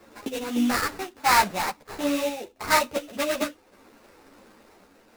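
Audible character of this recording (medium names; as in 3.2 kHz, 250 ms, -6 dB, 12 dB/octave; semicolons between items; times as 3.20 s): random-step tremolo; aliases and images of a low sample rate 3.2 kHz, jitter 20%; a shimmering, thickened sound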